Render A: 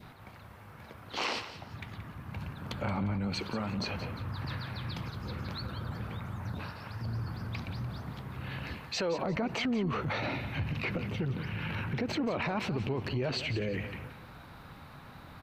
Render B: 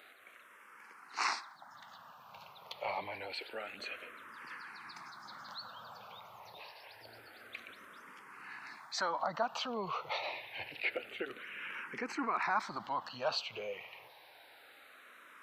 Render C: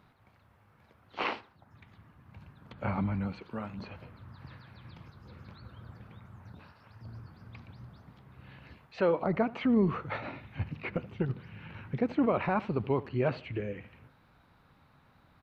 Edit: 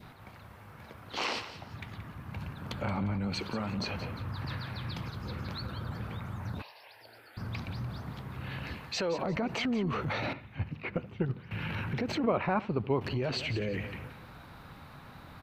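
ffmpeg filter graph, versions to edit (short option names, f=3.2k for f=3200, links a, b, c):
-filter_complex "[2:a]asplit=2[a][b];[0:a]asplit=4[c][d][e][f];[c]atrim=end=6.622[g];[1:a]atrim=start=6.618:end=7.372[h];[d]atrim=start=7.368:end=10.332[i];[a]atrim=start=10.328:end=11.512[j];[e]atrim=start=11.508:end=12.242[k];[b]atrim=start=12.238:end=13.012[l];[f]atrim=start=13.008[m];[g][h]acrossfade=d=0.004:c1=hsin:c2=hsin[n];[n][i]acrossfade=d=0.004:c1=hsin:c2=hsin[o];[o][j]acrossfade=d=0.004:c1=hsin:c2=hsin[p];[p][k]acrossfade=d=0.004:c1=hsin:c2=hsin[q];[q][l]acrossfade=d=0.004:c1=hsin:c2=hsin[r];[r][m]acrossfade=d=0.004:c1=hsin:c2=hsin"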